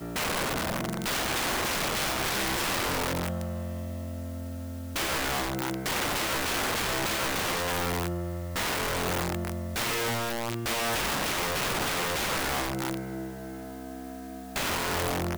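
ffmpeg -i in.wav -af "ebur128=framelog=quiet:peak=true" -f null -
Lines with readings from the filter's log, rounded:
Integrated loudness:
  I:         -29.0 LUFS
  Threshold: -39.2 LUFS
Loudness range:
  LRA:         3.1 LU
  Threshold: -49.1 LUFS
  LRA low:   -31.1 LUFS
  LRA high:  -28.0 LUFS
True peak:
  Peak:      -17.7 dBFS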